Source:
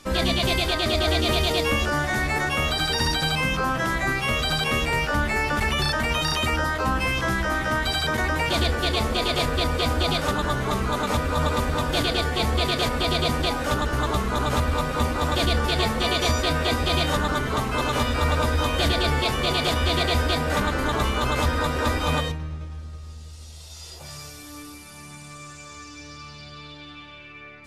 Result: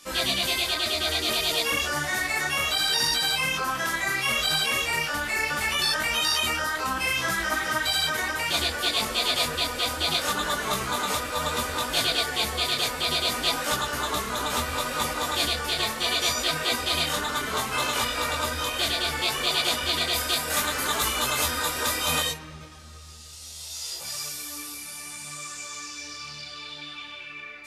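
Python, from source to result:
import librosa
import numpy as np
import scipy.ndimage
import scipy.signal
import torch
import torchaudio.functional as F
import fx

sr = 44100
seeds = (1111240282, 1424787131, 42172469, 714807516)

y = fx.high_shelf(x, sr, hz=6400.0, db=9.5, at=(20.13, 22.37))
y = fx.rider(y, sr, range_db=4, speed_s=0.5)
y = fx.tilt_eq(y, sr, slope=3.0)
y = fx.detune_double(y, sr, cents=23)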